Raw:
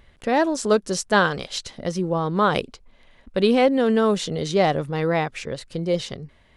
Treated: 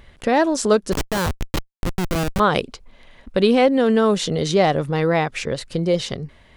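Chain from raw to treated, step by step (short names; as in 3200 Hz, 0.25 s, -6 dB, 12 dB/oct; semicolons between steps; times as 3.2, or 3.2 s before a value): in parallel at +0.5 dB: compressor 16:1, threshold -25 dBFS, peak gain reduction 14 dB; 0.92–2.4 on the sum: Schmitt trigger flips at -16 dBFS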